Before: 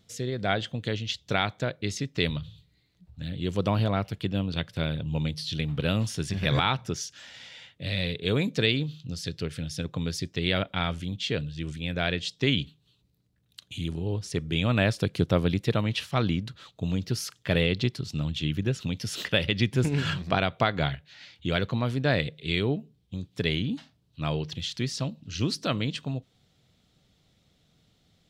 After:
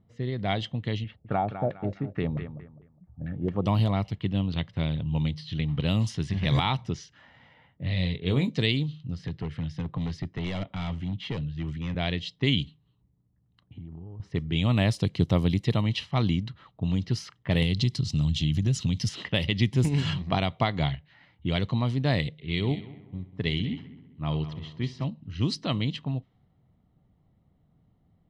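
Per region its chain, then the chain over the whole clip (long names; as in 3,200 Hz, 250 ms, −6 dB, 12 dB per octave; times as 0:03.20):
0:01.04–0:03.66: notch comb filter 1,000 Hz + repeating echo 204 ms, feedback 30%, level −10.5 dB + auto-filter low-pass saw down 4.5 Hz 490–2,000 Hz
0:07.54–0:08.50: high-shelf EQ 4,200 Hz −7 dB + double-tracking delay 22 ms −8 dB
0:09.19–0:11.95: hard clipping −26.5 dBFS + multiband upward and downward compressor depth 40%
0:13.62–0:14.20: low-pass filter 1,500 Hz 6 dB per octave + downward compressor 8 to 1, threshold −39 dBFS
0:17.62–0:19.09: bass and treble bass +8 dB, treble +13 dB + downward compressor 2.5 to 1, threshold −24 dBFS
0:22.45–0:25.04: echo machine with several playback heads 65 ms, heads first and third, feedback 55%, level −14 dB + expander for the loud parts, over −36 dBFS
whole clip: low-pass that shuts in the quiet parts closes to 920 Hz, open at −20 dBFS; comb filter 1 ms, depth 40%; dynamic equaliser 1,500 Hz, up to −7 dB, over −47 dBFS, Q 1.7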